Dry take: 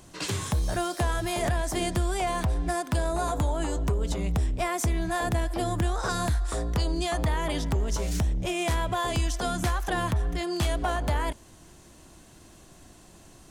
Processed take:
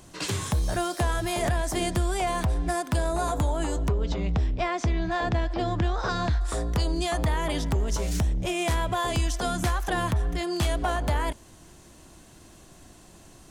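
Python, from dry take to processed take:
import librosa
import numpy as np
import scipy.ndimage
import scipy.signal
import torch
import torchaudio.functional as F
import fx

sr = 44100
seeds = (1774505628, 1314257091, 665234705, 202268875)

y = fx.lowpass(x, sr, hz=5300.0, slope=24, at=(3.88, 6.41))
y = F.gain(torch.from_numpy(y), 1.0).numpy()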